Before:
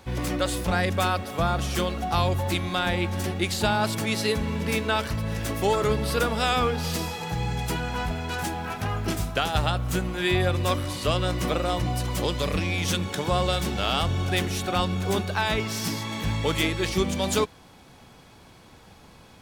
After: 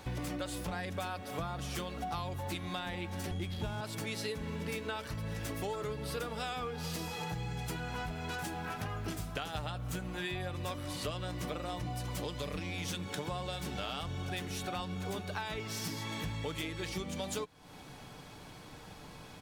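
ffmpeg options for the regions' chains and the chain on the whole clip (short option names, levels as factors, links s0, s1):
-filter_complex "[0:a]asettb=1/sr,asplit=3[s0][s1][s2];[s0]atrim=end=3.314[s3];[s1]atrim=start=3.31:end=3.81,asetpts=PTS-STARTPTS,afade=t=in:d=0.004:c=qsin,afade=t=out:st=0.496:d=0.004:c=qsin,aeval=exprs='val(0)+0.0316*sin(2*PI*3300*n/s)':c=same,aemphasis=mode=reproduction:type=bsi,adynamicsmooth=sensitivity=6.5:basefreq=600[s4];[s2]atrim=start=3.806[s5];[s3][s4]acrossfade=d=0.004:c1=hsin:c2=qsin[s6];[s6][s5]acrossfade=d=0.004:c1=qsin:c2=hsin,aecho=1:1:6.7:0.32,acompressor=threshold=0.0158:ratio=6"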